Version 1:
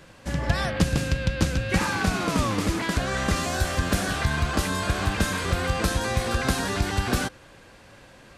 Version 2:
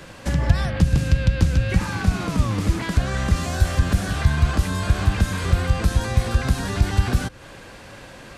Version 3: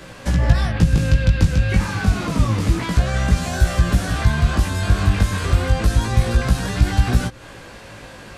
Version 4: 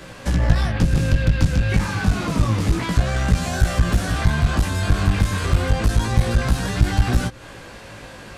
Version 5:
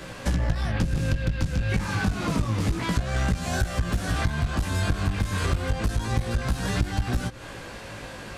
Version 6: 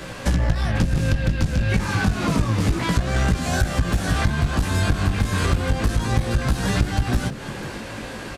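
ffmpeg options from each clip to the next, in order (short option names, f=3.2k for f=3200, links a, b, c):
-filter_complex "[0:a]acrossover=split=160[a][b];[b]acompressor=threshold=-35dB:ratio=10[c];[a][c]amix=inputs=2:normalize=0,volume=8.5dB"
-af "flanger=delay=16.5:depth=3.4:speed=0.29,volume=5.5dB"
-af "aeval=exprs='clip(val(0),-1,0.15)':c=same"
-af "acompressor=threshold=-21dB:ratio=5"
-filter_complex "[0:a]asplit=6[a][b][c][d][e][f];[b]adelay=495,afreqshift=79,volume=-15dB[g];[c]adelay=990,afreqshift=158,volume=-20.5dB[h];[d]adelay=1485,afreqshift=237,volume=-26dB[i];[e]adelay=1980,afreqshift=316,volume=-31.5dB[j];[f]adelay=2475,afreqshift=395,volume=-37.1dB[k];[a][g][h][i][j][k]amix=inputs=6:normalize=0,volume=4.5dB"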